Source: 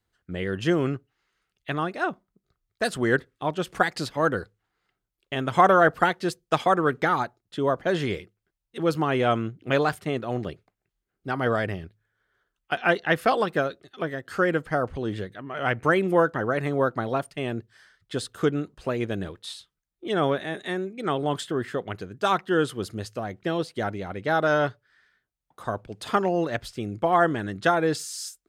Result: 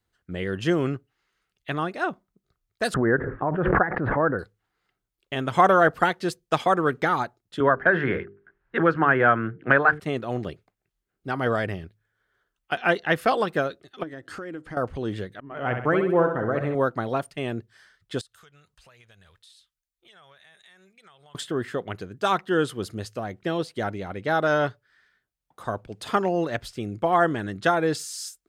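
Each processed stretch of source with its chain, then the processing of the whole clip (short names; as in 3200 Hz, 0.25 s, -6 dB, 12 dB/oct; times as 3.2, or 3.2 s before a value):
2.94–4.39 elliptic low-pass 1700 Hz, stop band 80 dB + backwards sustainer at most 26 dB/s
7.6–10 synth low-pass 1600 Hz, resonance Q 5.3 + notches 50/100/150/200/250/300/350/400/450 Hz + three-band squash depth 70%
14.03–14.77 LPF 11000 Hz 24 dB/oct + bell 310 Hz +12 dB 0.22 oct + compressor 4:1, threshold -35 dBFS
15.4–16.75 LPF 1300 Hz 6 dB/oct + expander -34 dBFS + flutter echo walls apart 11.1 m, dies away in 0.6 s
18.21–21.35 passive tone stack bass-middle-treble 10-0-10 + compressor 5:1, threshold -52 dBFS
whole clip: dry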